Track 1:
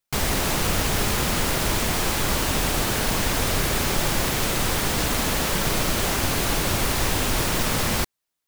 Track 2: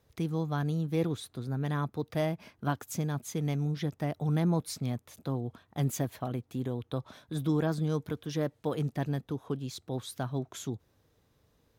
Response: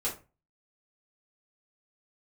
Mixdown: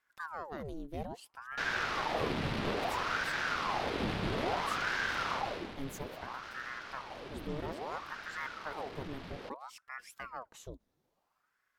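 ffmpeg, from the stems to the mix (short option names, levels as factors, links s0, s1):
-filter_complex "[0:a]lowpass=f=4600:w=0.5412,lowpass=f=4600:w=1.3066,adynamicsmooth=sensitivity=3.5:basefreq=3300,adelay=1450,volume=0.398,afade=t=out:st=5.27:d=0.47:silence=0.266073[s0];[1:a]volume=0.398[s1];[s0][s1]amix=inputs=2:normalize=0,aeval=exprs='val(0)*sin(2*PI*860*n/s+860*0.85/0.6*sin(2*PI*0.6*n/s))':c=same"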